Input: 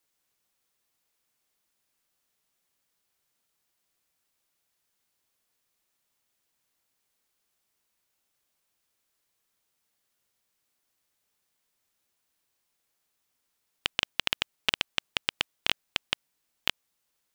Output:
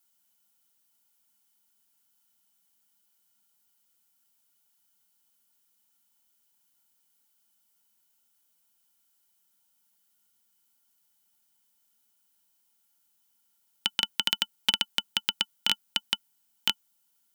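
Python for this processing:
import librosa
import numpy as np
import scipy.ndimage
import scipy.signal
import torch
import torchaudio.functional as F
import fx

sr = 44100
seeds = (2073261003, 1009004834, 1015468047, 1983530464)

y = F.preemphasis(torch.from_numpy(x), 0.8).numpy()
y = fx.small_body(y, sr, hz=(210.0, 890.0, 1400.0, 3000.0), ring_ms=50, db=15)
y = y * librosa.db_to_amplitude(5.0)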